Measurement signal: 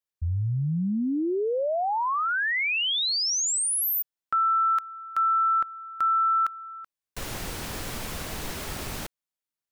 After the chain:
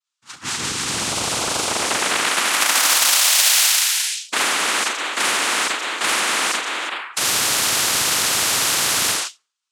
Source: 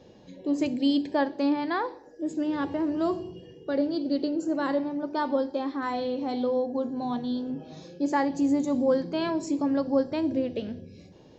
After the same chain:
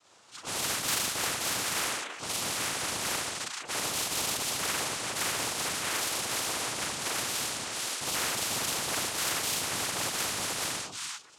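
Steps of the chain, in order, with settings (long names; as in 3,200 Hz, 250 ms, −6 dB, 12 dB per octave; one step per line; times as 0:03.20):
flutter between parallel walls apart 6.3 metres, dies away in 0.31 s
in parallel at −3 dB: floating-point word with a short mantissa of 2 bits
on the sum: first difference
four-comb reverb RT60 0.4 s, combs from 30 ms, DRR −6 dB
noise reduction from a noise print of the clip's start 25 dB
cochlear-implant simulation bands 4
parametric band 1,300 Hz +11.5 dB 0.82 octaves
every bin compressed towards the loudest bin 4 to 1
level −1.5 dB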